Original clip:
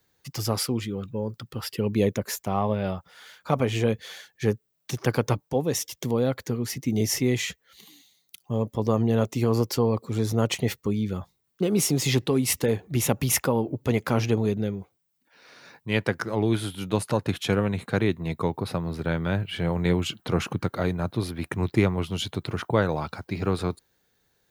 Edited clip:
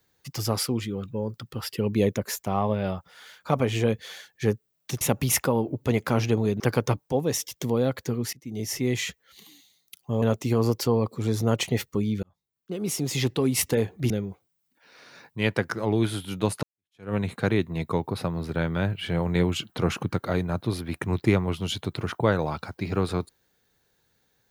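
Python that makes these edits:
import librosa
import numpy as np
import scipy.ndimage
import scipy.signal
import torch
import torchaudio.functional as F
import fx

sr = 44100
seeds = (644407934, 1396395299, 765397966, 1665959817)

y = fx.edit(x, sr, fx.fade_in_from(start_s=6.74, length_s=0.72, floor_db=-22.0),
    fx.cut(start_s=8.63, length_s=0.5),
    fx.fade_in_span(start_s=11.14, length_s=1.31),
    fx.move(start_s=13.01, length_s=1.59, to_s=5.01),
    fx.fade_in_span(start_s=17.13, length_s=0.51, curve='exp'), tone=tone)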